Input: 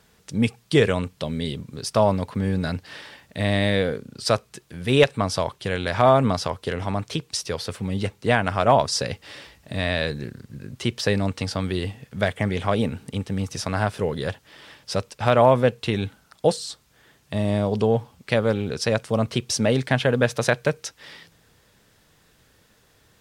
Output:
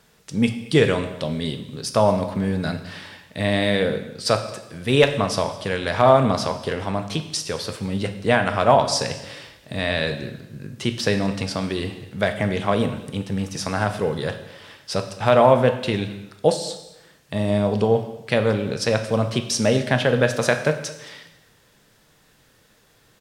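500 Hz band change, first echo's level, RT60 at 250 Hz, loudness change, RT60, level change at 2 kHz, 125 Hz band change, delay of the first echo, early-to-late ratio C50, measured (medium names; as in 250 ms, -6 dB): +2.0 dB, -21.5 dB, 0.95 s, +1.5 dB, 0.95 s, +2.0 dB, 0.0 dB, 218 ms, 10.0 dB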